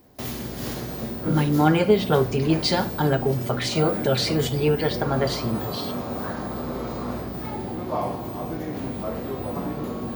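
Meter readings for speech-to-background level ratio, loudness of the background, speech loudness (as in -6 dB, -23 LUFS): 8.0 dB, -30.5 LUFS, -22.5 LUFS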